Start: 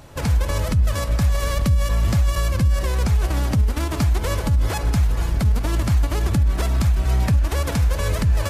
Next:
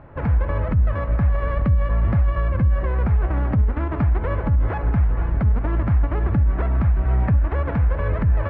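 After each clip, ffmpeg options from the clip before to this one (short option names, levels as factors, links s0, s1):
-af "lowpass=f=1900:w=0.5412,lowpass=f=1900:w=1.3066"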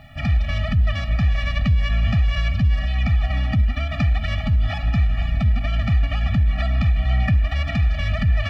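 -af "aexciter=amount=3.6:drive=9.5:freq=2100,highshelf=f=2000:g=8,afftfilt=real='re*eq(mod(floor(b*sr/1024/280),2),0)':imag='im*eq(mod(floor(b*sr/1024/280),2),0)':win_size=1024:overlap=0.75"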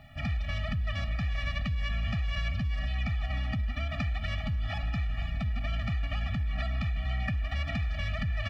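-filter_complex "[0:a]asplit=2[s0][s1];[s1]adelay=250.7,volume=0.112,highshelf=f=4000:g=-5.64[s2];[s0][s2]amix=inputs=2:normalize=0,acrossover=split=920[s3][s4];[s3]alimiter=limit=0.126:level=0:latency=1:release=94[s5];[s5][s4]amix=inputs=2:normalize=0,volume=0.422"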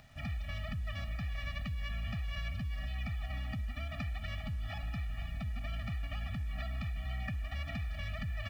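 -af "acompressor=mode=upward:threshold=0.00282:ratio=2.5,acrusher=bits=8:mix=0:aa=0.5,volume=0.447"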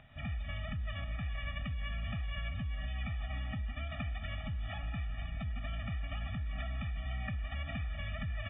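-ar 16000 -c:a aac -b:a 16k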